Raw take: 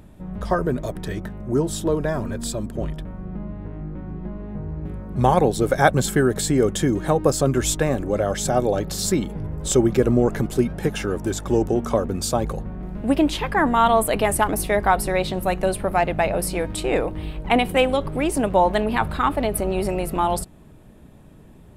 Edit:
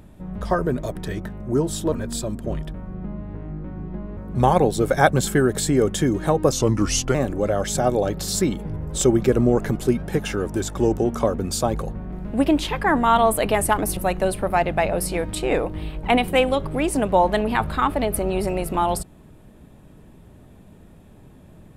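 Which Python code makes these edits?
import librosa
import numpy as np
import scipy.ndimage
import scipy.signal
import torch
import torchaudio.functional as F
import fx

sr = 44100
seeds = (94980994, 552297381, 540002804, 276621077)

y = fx.edit(x, sr, fx.cut(start_s=1.92, length_s=0.31),
    fx.cut(start_s=4.48, length_s=0.5),
    fx.speed_span(start_s=7.33, length_s=0.52, speed=0.83),
    fx.cut(start_s=14.67, length_s=0.71), tone=tone)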